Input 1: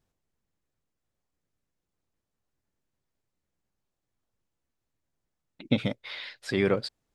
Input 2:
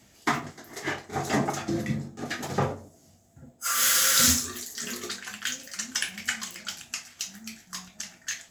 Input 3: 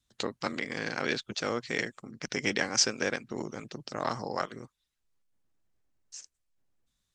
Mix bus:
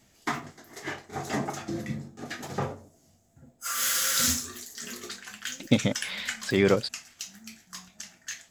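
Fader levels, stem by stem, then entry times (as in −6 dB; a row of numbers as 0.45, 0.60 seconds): +3.0 dB, −4.5 dB, muted; 0.00 s, 0.00 s, muted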